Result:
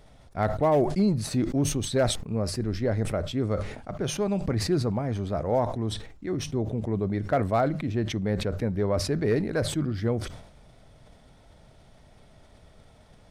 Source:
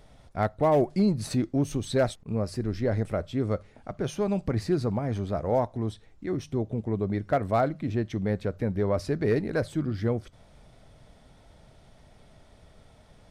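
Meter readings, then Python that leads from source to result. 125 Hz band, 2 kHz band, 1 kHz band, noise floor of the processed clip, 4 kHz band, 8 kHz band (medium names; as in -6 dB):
+1.5 dB, +1.5 dB, +0.5 dB, -55 dBFS, +8.0 dB, +9.0 dB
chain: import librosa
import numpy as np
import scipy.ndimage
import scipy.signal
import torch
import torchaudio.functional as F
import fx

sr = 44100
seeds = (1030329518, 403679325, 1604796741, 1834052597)

y = fx.sustainer(x, sr, db_per_s=73.0)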